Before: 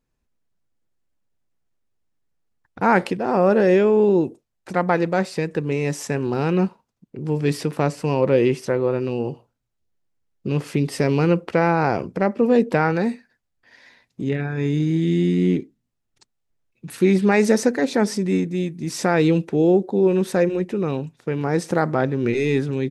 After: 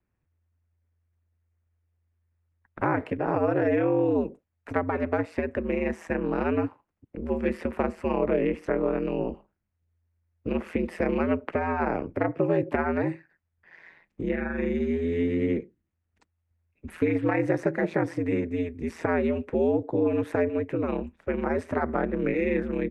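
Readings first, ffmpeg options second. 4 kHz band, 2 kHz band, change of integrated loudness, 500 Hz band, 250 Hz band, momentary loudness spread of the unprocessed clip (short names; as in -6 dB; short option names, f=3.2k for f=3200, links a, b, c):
under -15 dB, -6.0 dB, -6.5 dB, -6.5 dB, -6.5 dB, 9 LU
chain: -filter_complex "[0:a]aeval=exprs='val(0)*sin(2*PI*84*n/s)':c=same,highshelf=f=3.1k:t=q:w=1.5:g=-12,acrossover=split=180|470|2800[a][b][c][d];[a]acompressor=threshold=-38dB:ratio=4[e];[b]acompressor=threshold=-25dB:ratio=4[f];[c]acompressor=threshold=-27dB:ratio=4[g];[d]acompressor=threshold=-52dB:ratio=4[h];[e][f][g][h]amix=inputs=4:normalize=0"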